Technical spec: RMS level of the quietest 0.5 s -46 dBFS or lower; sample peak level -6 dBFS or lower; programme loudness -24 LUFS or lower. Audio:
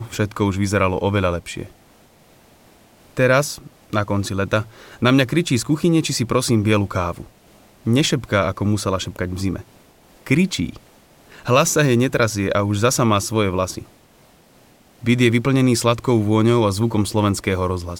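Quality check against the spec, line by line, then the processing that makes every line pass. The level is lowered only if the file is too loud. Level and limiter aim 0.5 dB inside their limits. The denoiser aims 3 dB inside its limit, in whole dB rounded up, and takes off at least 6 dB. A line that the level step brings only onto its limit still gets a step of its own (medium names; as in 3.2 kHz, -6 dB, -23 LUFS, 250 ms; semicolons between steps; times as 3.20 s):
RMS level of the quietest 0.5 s -52 dBFS: pass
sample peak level -2.0 dBFS: fail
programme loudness -19.0 LUFS: fail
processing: trim -5.5 dB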